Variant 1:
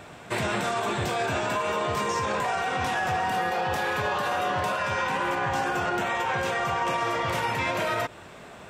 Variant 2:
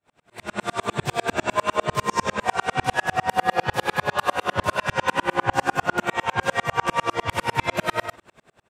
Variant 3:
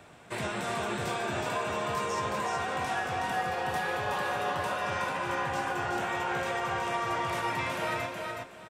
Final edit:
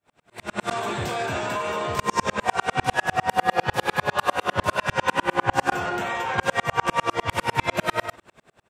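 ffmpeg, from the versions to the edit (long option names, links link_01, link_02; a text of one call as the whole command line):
ffmpeg -i take0.wav -i take1.wav -filter_complex "[0:a]asplit=2[link_01][link_02];[1:a]asplit=3[link_03][link_04][link_05];[link_03]atrim=end=0.712[link_06];[link_01]atrim=start=0.708:end=1.992[link_07];[link_04]atrim=start=1.988:end=5.722[link_08];[link_02]atrim=start=5.718:end=6.382[link_09];[link_05]atrim=start=6.378[link_10];[link_06][link_07]acrossfade=duration=0.004:curve1=hsin:curve2=hsin[link_11];[link_11][link_08]acrossfade=duration=0.004:curve1=hsin:curve2=hsin[link_12];[link_12][link_09]acrossfade=duration=0.004:curve1=hsin:curve2=hsin[link_13];[link_13][link_10]acrossfade=duration=0.004:curve1=hsin:curve2=hsin" out.wav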